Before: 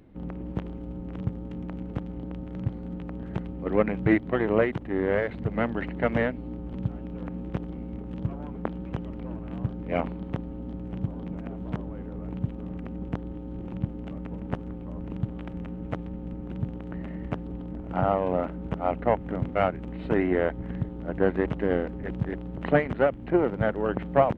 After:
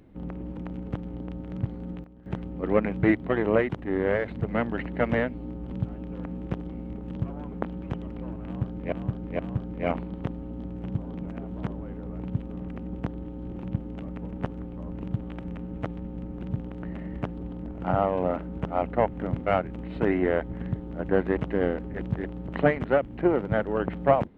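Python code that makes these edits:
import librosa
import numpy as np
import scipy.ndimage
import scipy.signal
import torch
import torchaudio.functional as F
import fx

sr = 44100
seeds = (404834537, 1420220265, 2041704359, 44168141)

y = fx.edit(x, sr, fx.cut(start_s=0.57, length_s=1.03),
    fx.fade_down_up(start_s=2.78, length_s=0.8, db=-14.5, fade_s=0.29, curve='log'),
    fx.repeat(start_s=9.48, length_s=0.47, count=3), tone=tone)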